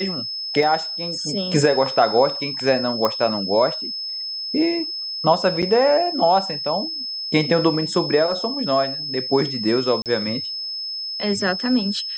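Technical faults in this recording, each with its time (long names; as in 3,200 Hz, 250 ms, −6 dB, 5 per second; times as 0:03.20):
whistle 5,200 Hz −26 dBFS
0:00.63: drop-out 2.3 ms
0:03.05: click −7 dBFS
0:05.62–0:05.63: drop-out 6.6 ms
0:10.02–0:10.06: drop-out 38 ms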